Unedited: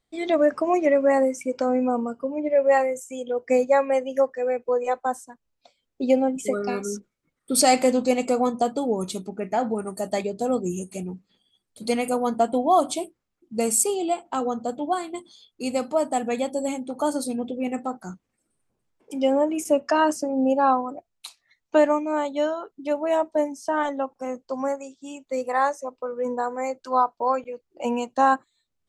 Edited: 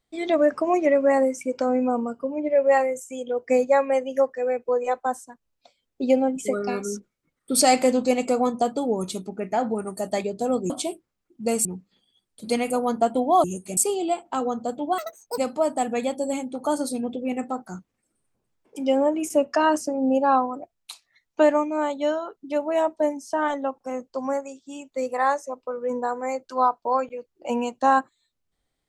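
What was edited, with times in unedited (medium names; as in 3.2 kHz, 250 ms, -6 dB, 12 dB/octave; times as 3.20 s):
10.70–11.03 s: swap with 12.82–13.77 s
14.98–15.73 s: speed 188%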